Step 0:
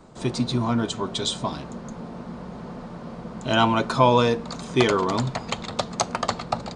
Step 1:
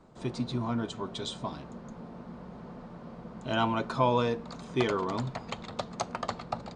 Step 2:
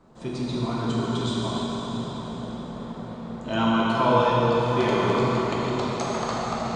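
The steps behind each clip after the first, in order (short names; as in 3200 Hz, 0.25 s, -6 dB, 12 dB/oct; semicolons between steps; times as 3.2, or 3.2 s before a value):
high shelf 4800 Hz -8.5 dB; gain -8 dB
reverb RT60 5.5 s, pre-delay 12 ms, DRR -7 dB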